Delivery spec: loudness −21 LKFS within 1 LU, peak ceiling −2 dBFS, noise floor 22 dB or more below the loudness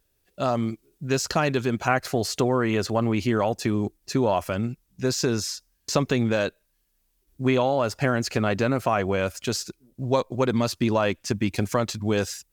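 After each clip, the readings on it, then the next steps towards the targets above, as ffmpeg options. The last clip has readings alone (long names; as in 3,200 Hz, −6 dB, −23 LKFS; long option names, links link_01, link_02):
integrated loudness −25.0 LKFS; sample peak −7.5 dBFS; target loudness −21.0 LKFS
→ -af "volume=4dB"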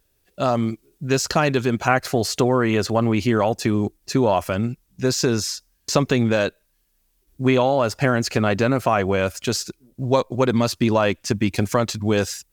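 integrated loudness −21.0 LKFS; sample peak −3.5 dBFS; background noise floor −67 dBFS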